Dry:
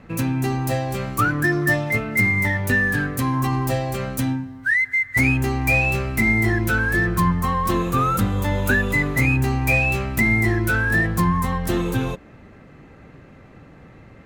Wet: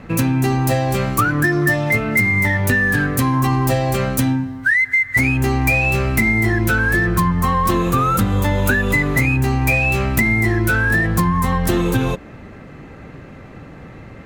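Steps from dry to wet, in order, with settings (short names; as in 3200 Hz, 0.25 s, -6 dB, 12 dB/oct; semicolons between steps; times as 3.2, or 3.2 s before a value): compressor, threshold -21 dBFS, peak gain reduction 7.5 dB; gain +8 dB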